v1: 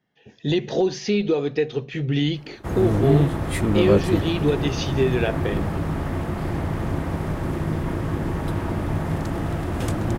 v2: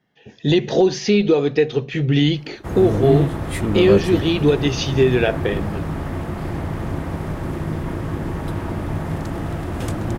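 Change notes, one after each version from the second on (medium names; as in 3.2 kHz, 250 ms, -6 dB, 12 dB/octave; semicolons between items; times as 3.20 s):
speech +5.5 dB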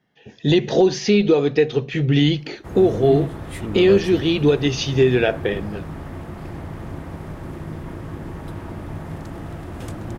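background -7.0 dB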